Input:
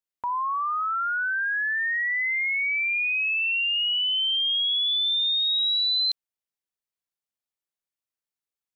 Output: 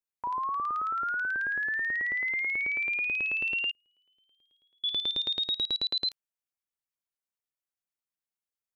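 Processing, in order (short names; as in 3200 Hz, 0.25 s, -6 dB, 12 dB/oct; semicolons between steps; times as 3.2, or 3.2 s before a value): 3.71–4.84 inverse Chebyshev band-stop 750–4000 Hz, stop band 40 dB; LFO notch square 9.2 Hz 380–4000 Hz; gain -4 dB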